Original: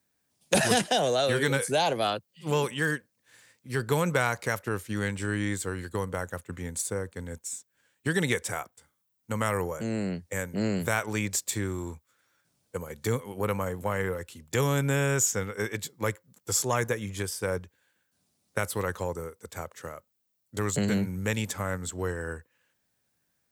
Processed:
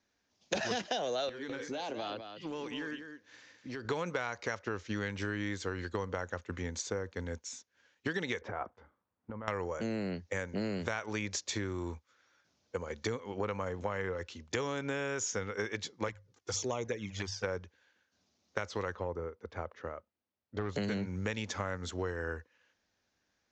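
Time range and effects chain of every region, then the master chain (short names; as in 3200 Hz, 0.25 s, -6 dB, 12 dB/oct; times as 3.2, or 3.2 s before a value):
1.29–3.85 bell 290 Hz +9 dB 0.35 oct + compressor 20:1, threshold -35 dBFS + echo 0.204 s -8 dB
8.41–9.48 LPF 1200 Hz + negative-ratio compressor -39 dBFS
16.08–17.44 notches 50/100/150 Hz + envelope flanger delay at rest 3.3 ms, full sweep at -22.5 dBFS
18.95–20.76 hard clip -22 dBFS + tape spacing loss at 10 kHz 30 dB
whole clip: steep low-pass 6600 Hz 72 dB/oct; bell 140 Hz -11.5 dB 0.62 oct; compressor, threshold -33 dBFS; gain +1.5 dB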